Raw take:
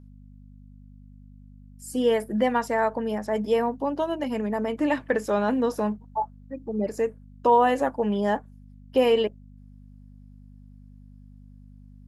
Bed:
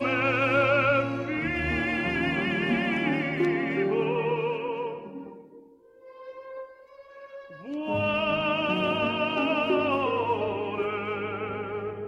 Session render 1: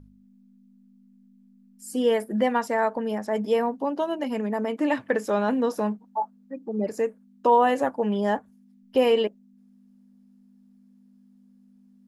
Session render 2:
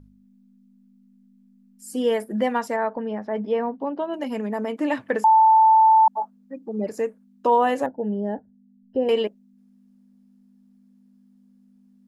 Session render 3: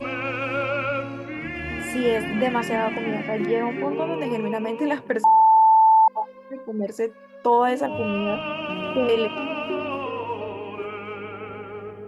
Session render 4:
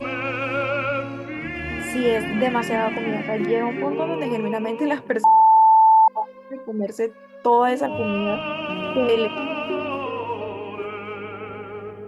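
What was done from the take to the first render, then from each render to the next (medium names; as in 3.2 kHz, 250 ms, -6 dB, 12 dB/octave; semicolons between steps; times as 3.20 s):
de-hum 50 Hz, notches 3
2.76–4.14 s: distance through air 290 m; 5.24–6.08 s: bleep 883 Hz -11 dBFS; 7.86–9.09 s: boxcar filter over 38 samples
add bed -3 dB
trim +1.5 dB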